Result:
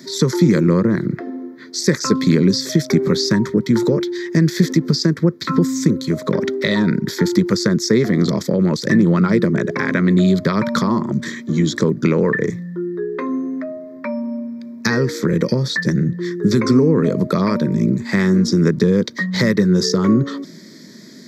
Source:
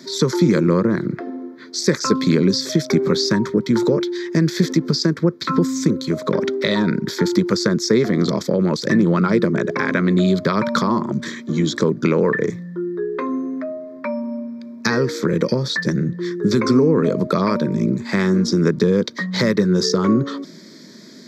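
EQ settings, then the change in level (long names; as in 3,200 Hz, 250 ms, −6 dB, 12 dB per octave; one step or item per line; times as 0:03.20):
low-shelf EQ 270 Hz +8 dB
parametric band 1,900 Hz +6 dB 0.27 octaves
high-shelf EQ 7,200 Hz +9.5 dB
−2.5 dB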